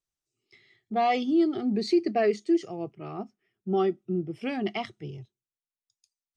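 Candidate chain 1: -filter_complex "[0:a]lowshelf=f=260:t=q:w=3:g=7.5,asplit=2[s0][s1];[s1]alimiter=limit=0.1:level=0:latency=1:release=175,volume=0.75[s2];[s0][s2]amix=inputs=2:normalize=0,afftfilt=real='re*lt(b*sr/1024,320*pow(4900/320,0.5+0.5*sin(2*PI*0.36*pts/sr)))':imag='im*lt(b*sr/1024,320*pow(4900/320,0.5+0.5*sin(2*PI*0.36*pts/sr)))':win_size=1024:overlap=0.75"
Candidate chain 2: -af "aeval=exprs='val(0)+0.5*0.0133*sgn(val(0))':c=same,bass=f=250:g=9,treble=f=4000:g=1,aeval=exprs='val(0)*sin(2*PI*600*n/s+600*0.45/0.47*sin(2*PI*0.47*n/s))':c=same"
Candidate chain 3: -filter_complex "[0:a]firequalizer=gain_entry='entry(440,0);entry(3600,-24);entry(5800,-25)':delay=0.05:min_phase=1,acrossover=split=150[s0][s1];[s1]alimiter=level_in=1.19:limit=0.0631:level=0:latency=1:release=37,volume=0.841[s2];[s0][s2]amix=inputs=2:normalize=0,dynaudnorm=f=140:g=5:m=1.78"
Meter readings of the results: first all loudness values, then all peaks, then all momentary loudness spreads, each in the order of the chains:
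-22.0 LUFS, -27.5 LUFS, -28.5 LUFS; -7.5 dBFS, -12.0 dBFS, -18.0 dBFS; 10 LU, 20 LU, 12 LU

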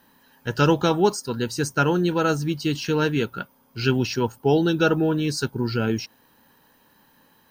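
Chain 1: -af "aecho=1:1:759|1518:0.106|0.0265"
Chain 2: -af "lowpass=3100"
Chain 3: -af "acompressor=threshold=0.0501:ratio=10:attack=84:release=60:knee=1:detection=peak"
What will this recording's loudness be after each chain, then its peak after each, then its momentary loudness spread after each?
-23.0 LUFS, -23.0 LUFS, -25.5 LUFS; -5.5 dBFS, -6.0 dBFS, -9.0 dBFS; 10 LU, 10 LU, 7 LU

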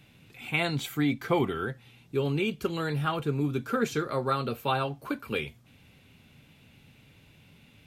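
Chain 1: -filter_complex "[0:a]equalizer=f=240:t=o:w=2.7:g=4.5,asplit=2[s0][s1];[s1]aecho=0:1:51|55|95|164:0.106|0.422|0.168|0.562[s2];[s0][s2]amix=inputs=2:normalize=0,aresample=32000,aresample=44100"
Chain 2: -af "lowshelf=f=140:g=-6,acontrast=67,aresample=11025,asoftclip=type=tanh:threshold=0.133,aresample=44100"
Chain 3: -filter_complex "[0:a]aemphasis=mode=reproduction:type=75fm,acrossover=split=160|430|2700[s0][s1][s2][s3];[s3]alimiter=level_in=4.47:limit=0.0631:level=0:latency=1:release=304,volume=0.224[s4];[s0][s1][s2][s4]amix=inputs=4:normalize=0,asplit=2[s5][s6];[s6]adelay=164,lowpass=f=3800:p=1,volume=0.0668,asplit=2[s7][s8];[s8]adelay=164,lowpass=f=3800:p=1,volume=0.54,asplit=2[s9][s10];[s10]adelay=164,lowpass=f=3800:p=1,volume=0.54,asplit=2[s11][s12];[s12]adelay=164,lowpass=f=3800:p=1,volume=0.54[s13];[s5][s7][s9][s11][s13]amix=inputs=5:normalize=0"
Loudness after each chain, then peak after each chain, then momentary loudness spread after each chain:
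-25.0 LUFS, -26.5 LUFS, -30.0 LUFS; -9.5 dBFS, -15.0 dBFS, -14.0 dBFS; 8 LU, 6 LU, 8 LU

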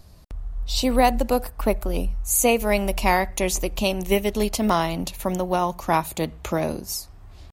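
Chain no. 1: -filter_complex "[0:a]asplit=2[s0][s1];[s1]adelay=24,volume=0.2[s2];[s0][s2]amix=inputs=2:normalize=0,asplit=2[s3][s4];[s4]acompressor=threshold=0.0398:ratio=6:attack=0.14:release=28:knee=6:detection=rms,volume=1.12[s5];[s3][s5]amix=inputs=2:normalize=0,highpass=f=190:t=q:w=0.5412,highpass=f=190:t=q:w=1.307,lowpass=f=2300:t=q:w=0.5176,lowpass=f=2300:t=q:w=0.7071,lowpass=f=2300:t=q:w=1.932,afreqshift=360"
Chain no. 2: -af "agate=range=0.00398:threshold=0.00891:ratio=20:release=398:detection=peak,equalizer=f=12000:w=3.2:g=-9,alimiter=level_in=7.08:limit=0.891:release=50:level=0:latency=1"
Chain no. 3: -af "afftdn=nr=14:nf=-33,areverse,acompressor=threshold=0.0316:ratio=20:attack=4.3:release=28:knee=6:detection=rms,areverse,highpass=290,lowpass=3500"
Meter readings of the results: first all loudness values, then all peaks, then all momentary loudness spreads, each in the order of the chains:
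-22.0 LUFS, -12.0 LUFS, -38.5 LUFS; -5.5 dBFS, -1.0 dBFS, -22.5 dBFS; 9 LU, 6 LU, 6 LU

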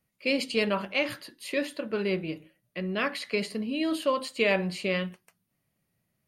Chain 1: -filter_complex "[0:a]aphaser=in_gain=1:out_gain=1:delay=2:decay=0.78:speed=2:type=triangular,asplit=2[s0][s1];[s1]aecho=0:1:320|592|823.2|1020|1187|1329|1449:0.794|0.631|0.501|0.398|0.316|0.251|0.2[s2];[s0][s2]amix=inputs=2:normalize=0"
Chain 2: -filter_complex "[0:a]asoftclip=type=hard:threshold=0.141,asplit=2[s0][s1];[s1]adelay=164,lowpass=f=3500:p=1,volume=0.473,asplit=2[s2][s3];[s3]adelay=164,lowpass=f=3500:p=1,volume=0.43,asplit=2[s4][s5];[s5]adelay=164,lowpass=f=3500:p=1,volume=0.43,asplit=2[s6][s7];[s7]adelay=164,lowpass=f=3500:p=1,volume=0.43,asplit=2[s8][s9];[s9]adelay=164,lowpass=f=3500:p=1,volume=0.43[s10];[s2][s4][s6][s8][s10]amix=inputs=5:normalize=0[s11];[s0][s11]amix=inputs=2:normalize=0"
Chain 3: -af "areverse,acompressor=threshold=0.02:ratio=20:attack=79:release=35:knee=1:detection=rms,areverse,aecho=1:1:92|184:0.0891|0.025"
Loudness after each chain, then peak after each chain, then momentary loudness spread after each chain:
-23.0 LUFS, -29.0 LUFS, -34.0 LUFS; -2.5 dBFS, -14.5 dBFS, -18.5 dBFS; 5 LU, 10 LU, 5 LU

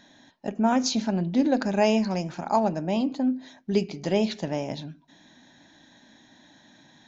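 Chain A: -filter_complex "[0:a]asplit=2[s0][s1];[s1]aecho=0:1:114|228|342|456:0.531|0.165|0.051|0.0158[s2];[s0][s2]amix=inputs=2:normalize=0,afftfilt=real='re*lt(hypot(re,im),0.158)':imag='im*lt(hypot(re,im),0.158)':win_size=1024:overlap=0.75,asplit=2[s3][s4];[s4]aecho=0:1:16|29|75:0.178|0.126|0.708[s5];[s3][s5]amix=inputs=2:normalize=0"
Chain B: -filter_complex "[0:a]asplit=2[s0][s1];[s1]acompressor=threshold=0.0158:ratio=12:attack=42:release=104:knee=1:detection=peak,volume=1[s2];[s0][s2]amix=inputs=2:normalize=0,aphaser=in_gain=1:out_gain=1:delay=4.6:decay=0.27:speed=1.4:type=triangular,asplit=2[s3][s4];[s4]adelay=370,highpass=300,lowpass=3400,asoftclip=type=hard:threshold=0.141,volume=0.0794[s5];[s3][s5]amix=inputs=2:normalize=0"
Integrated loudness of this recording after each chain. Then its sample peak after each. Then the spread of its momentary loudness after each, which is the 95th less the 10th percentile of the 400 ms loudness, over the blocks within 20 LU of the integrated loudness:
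-33.0 LUFS, -23.5 LUFS; -14.0 dBFS, -8.5 dBFS; 22 LU, 10 LU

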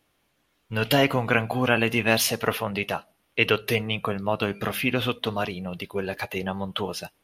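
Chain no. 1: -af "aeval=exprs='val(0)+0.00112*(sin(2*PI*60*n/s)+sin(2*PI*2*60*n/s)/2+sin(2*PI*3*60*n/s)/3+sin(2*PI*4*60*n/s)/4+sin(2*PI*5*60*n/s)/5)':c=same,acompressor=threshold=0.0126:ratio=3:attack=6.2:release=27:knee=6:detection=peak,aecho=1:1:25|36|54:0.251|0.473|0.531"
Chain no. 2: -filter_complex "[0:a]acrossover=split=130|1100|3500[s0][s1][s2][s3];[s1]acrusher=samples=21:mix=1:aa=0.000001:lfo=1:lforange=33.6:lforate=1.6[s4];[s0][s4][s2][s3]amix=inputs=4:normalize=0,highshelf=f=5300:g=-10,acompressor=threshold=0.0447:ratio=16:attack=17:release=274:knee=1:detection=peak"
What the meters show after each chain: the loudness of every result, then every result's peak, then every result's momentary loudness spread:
-33.5 LUFS, -32.0 LUFS; -15.5 dBFS, -12.5 dBFS; 5 LU, 4 LU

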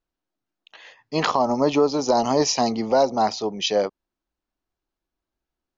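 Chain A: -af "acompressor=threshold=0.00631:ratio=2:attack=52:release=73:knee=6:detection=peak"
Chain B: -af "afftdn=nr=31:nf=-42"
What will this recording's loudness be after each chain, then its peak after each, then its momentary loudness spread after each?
-33.0 LUFS, -21.5 LUFS; -15.0 dBFS, -6.5 dBFS; 13 LU, 5 LU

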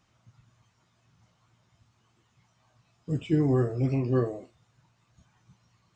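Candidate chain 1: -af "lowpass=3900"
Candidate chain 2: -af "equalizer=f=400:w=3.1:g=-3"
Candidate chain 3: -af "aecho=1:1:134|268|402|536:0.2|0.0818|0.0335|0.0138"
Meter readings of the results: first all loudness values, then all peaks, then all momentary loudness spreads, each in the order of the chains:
-27.0 LUFS, -28.0 LUFS, -27.5 LUFS; -13.0 dBFS, -13.5 dBFS, -13.0 dBFS; 10 LU, 10 LU, 10 LU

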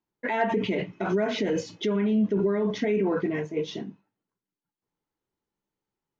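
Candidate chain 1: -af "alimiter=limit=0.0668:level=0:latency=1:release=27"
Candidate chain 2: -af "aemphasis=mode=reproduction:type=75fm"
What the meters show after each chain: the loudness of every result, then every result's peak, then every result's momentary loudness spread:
-31.5 LUFS, -26.5 LUFS; -23.5 dBFS, -13.0 dBFS; 4 LU, 8 LU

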